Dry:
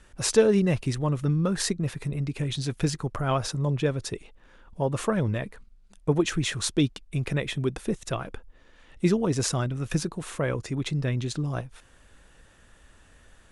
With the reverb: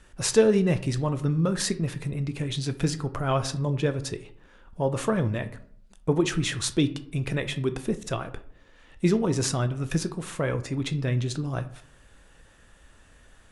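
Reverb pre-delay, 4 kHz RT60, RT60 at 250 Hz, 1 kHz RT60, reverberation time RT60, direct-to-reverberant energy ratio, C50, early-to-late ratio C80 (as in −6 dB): 13 ms, 0.30 s, 0.65 s, 0.55 s, 0.60 s, 10.0 dB, 15.0 dB, 19.0 dB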